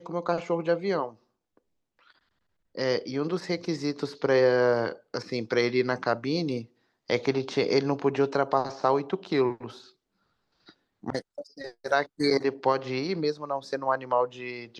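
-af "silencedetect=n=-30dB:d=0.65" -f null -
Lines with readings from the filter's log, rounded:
silence_start: 1.06
silence_end: 2.78 | silence_duration: 1.71
silence_start: 9.67
silence_end: 11.07 | silence_duration: 1.39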